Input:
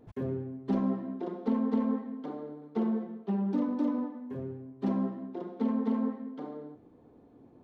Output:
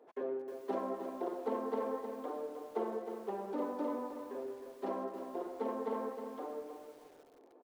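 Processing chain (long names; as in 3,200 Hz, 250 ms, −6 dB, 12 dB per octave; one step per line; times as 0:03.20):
high-pass filter 410 Hz 24 dB per octave
high-shelf EQ 2,100 Hz −11.5 dB
on a send: repeating echo 348 ms, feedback 41%, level −21.5 dB
on the sum: feedback echo at a low word length 311 ms, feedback 35%, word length 10 bits, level −8 dB
level +3 dB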